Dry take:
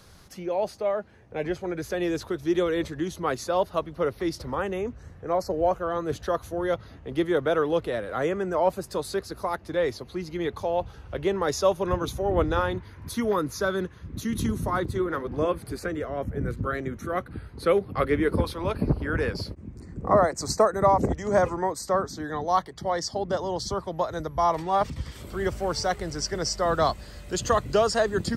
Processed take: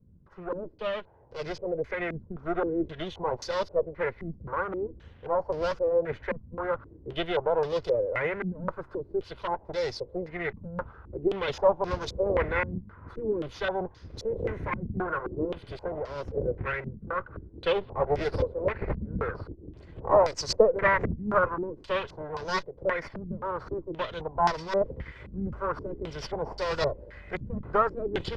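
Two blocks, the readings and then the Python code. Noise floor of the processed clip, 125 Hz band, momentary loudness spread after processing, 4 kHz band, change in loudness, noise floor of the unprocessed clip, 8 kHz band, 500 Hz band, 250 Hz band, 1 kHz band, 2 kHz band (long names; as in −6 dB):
−53 dBFS, −5.0 dB, 12 LU, −4.0 dB, −3.0 dB, −48 dBFS, −11.5 dB, −2.5 dB, −6.5 dB, −4.0 dB, +0.5 dB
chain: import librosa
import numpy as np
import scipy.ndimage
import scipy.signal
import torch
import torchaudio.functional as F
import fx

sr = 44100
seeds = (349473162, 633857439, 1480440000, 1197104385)

y = fx.lower_of_two(x, sr, delay_ms=2.0)
y = fx.filter_held_lowpass(y, sr, hz=3.8, low_hz=210.0, high_hz=5100.0)
y = F.gain(torch.from_numpy(y), -4.5).numpy()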